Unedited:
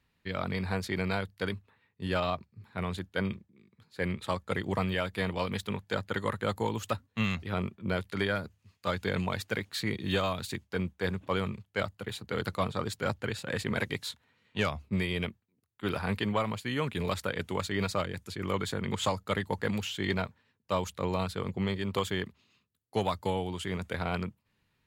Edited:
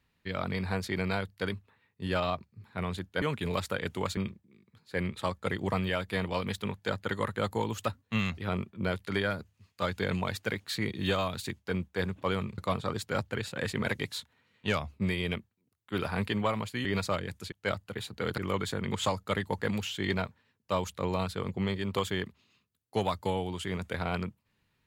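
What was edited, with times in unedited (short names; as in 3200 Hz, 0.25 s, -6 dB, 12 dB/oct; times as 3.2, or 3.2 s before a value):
11.63–12.49 move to 18.38
16.76–17.71 move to 3.22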